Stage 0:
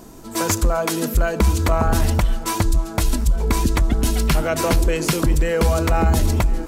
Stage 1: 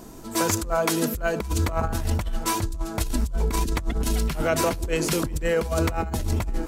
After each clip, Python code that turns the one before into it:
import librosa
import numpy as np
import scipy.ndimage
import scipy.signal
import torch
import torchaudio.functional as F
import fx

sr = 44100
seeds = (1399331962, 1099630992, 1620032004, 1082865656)

y = fx.over_compress(x, sr, threshold_db=-19.0, ratio=-0.5)
y = F.gain(torch.from_numpy(y), -4.0).numpy()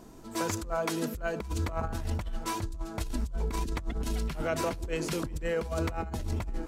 y = fx.high_shelf(x, sr, hz=8100.0, db=-8.5)
y = F.gain(torch.from_numpy(y), -7.5).numpy()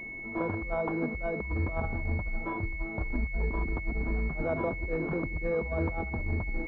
y = fx.pwm(x, sr, carrier_hz=2200.0)
y = F.gain(torch.from_numpy(y), 1.0).numpy()